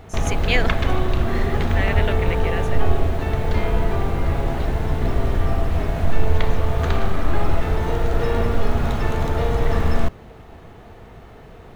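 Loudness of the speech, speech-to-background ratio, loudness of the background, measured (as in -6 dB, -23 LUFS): -28.0 LUFS, -5.0 dB, -23.0 LUFS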